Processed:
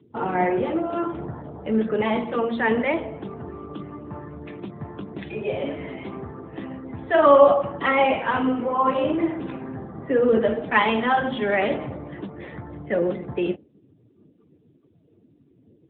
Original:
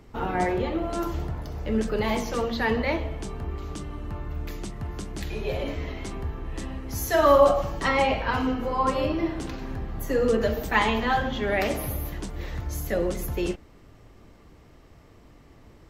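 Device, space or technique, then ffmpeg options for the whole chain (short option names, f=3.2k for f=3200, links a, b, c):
mobile call with aggressive noise cancelling: -af "highpass=130,afftdn=nr=32:nf=-46,volume=4dB" -ar 8000 -c:a libopencore_amrnb -b:a 10200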